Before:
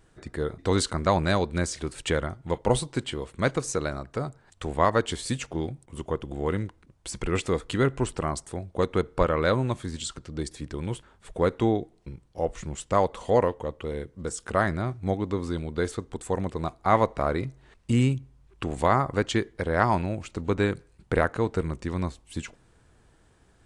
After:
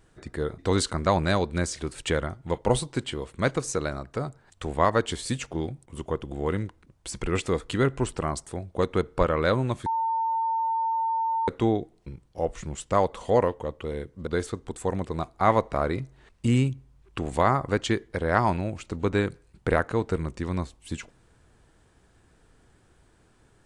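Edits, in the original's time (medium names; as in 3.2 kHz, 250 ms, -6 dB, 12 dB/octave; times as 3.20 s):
9.86–11.48 s: bleep 903 Hz -23 dBFS
14.27–15.72 s: delete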